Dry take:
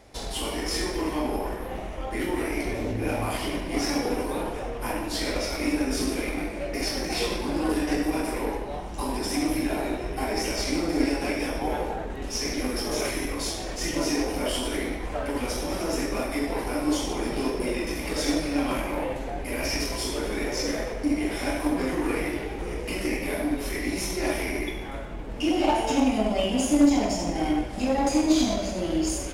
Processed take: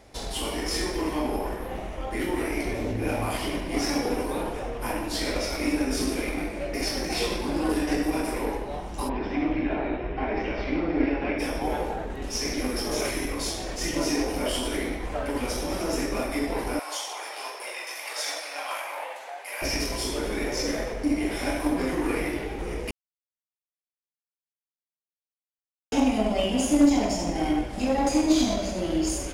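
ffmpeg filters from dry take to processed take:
ffmpeg -i in.wav -filter_complex "[0:a]asplit=3[link_01][link_02][link_03];[link_01]afade=type=out:start_time=9.08:duration=0.02[link_04];[link_02]lowpass=frequency=3000:width=0.5412,lowpass=frequency=3000:width=1.3066,afade=type=in:start_time=9.08:duration=0.02,afade=type=out:start_time=11.38:duration=0.02[link_05];[link_03]afade=type=in:start_time=11.38:duration=0.02[link_06];[link_04][link_05][link_06]amix=inputs=3:normalize=0,asettb=1/sr,asplit=3[link_07][link_08][link_09];[link_07]atrim=end=16.794[link_10];[link_08]atrim=start=16.79:end=19.62,asetpts=PTS-STARTPTS,afade=type=in:duration=0.004:curve=qsin,afade=type=out:start_time=2.826:duration=0.004:curve=qsin,highpass=frequency=690:width=0.5412,highpass=frequency=690:width=1.3066[link_11];[link_09]atrim=start=19.616[link_12];[link_10][link_11]acrossfade=duration=0.004:curve1=hsin:curve2=qsin[link_13];[link_13][link_12]acrossfade=duration=0.004:curve1=qsin:curve2=hsin,asplit=3[link_14][link_15][link_16];[link_14]atrim=end=22.91,asetpts=PTS-STARTPTS,afade=type=out:start_time=22.906:duration=0.004:curve=hsin[link_17];[link_15]atrim=start=22.91:end=25.92,asetpts=PTS-STARTPTS,volume=0[link_18];[link_16]atrim=start=25.92,asetpts=PTS-STARTPTS,afade=type=in:duration=0.004:curve=hsin[link_19];[link_17][link_18][link_19]concat=n=3:v=0:a=1" out.wav

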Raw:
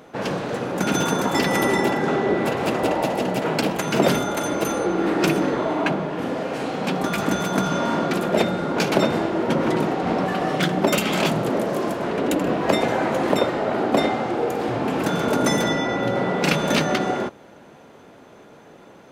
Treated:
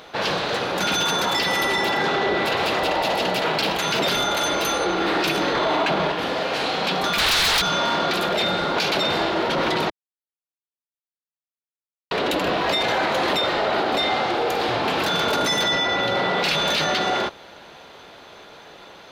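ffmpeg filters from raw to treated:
ffmpeg -i in.wav -filter_complex "[0:a]asplit=3[link_01][link_02][link_03];[link_01]afade=type=out:start_time=7.18:duration=0.02[link_04];[link_02]aeval=exprs='0.422*sin(PI/2*8.91*val(0)/0.422)':channel_layout=same,afade=type=in:start_time=7.18:duration=0.02,afade=type=out:start_time=7.6:duration=0.02[link_05];[link_03]afade=type=in:start_time=7.6:duration=0.02[link_06];[link_04][link_05][link_06]amix=inputs=3:normalize=0,asplit=5[link_07][link_08][link_09][link_10][link_11];[link_07]atrim=end=5.552[link_12];[link_08]atrim=start=5.548:end=6.122,asetpts=PTS-STARTPTS,volume=5dB[link_13];[link_09]atrim=start=6.118:end=9.9,asetpts=PTS-STARTPTS,afade=type=out:start_time=3.778:duration=0.004:curve=hsin[link_14];[link_10]atrim=start=9.9:end=12.11,asetpts=PTS-STARTPTS,volume=0[link_15];[link_11]atrim=start=12.11,asetpts=PTS-STARTPTS,afade=type=in:duration=0.004:curve=hsin[link_16];[link_12][link_13]acrossfade=duration=0.004:curve1=hsin:curve2=hsin[link_17];[link_14][link_15][link_16]concat=n=3:v=0:a=1[link_18];[link_17][link_18]acrossfade=duration=0.004:curve1=hsin:curve2=hsin,equalizer=frequency=125:width_type=o:width=1:gain=-8,equalizer=frequency=250:width_type=o:width=1:gain=-10,equalizer=frequency=500:width_type=o:width=1:gain=-3,equalizer=frequency=4000:width_type=o:width=1:gain=11,equalizer=frequency=8000:width_type=o:width=1:gain=-6,acontrast=46,alimiter=limit=-13.5dB:level=0:latency=1:release=13" out.wav

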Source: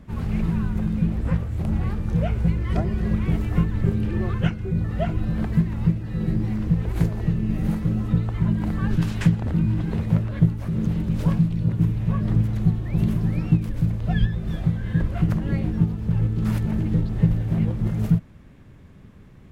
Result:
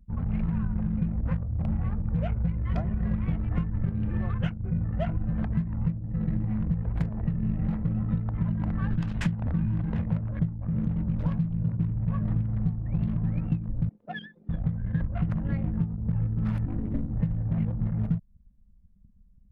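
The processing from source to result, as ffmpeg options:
ffmpeg -i in.wav -filter_complex "[0:a]asettb=1/sr,asplit=3[link_01][link_02][link_03];[link_01]atrim=end=5.554[link_04];[link_02]atrim=start=5.55:end=10.28,asetpts=PTS-STARTPTS,afade=type=in:duration=0.004:curve=qsin,afade=type=out:start_time=4.726:duration=0.004:curve=qsin,aecho=1:1:745:0.237,atrim=end_sample=208593[link_05];[link_03]atrim=start=10.276[link_06];[link_04][link_05]acrossfade=duration=0.004:curve1=hsin:curve2=qsin[link_07];[link_07][link_06]acrossfade=duration=0.004:curve1=qsin:curve2=hsin,asettb=1/sr,asplit=3[link_08][link_09][link_10];[link_08]atrim=end=13.894[link_11];[link_09]atrim=start=13.89:end=14.49,asetpts=PTS-STARTPTS,afade=type=in:duration=0.004:curve=qsin,afade=type=out:start_time=0.596:duration=0.004:curve=qsin,highpass=frequency=270:width=0.5412,highpass=frequency=270:width=1.3066[link_12];[link_10]atrim=start=14.486[link_13];[link_11][link_12]acrossfade=duration=0.004:curve1=hsin:curve2=qsin[link_14];[link_14][link_13]acrossfade=duration=0.004:curve1=qsin:curve2=hsin,asplit=3[link_15][link_16][link_17];[link_15]afade=type=out:start_time=16.65:duration=0.02[link_18];[link_16]aeval=exprs='val(0)*sin(2*PI*110*n/s)':channel_layout=same,afade=type=in:start_time=16.65:duration=0.02,afade=type=out:start_time=17.11:duration=0.02[link_19];[link_17]afade=type=in:start_time=17.11:duration=0.02[link_20];[link_18][link_19][link_20]amix=inputs=3:normalize=0,anlmdn=15.8,equalizer=frequency=370:width_type=o:width=0.44:gain=-13.5,acompressor=threshold=-21dB:ratio=6,volume=-1.5dB" out.wav

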